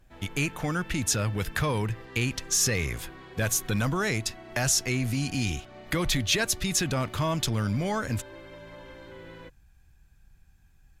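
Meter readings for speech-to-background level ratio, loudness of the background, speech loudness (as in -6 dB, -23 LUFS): 19.0 dB, -46.5 LUFS, -27.5 LUFS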